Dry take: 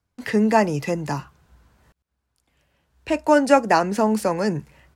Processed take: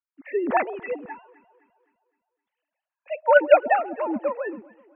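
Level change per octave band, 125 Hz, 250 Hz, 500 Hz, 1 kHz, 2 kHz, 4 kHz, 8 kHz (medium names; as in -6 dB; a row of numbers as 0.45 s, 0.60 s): under -25 dB, -11.5 dB, -0.5 dB, -2.5 dB, +0.5 dB, under -10 dB, under -40 dB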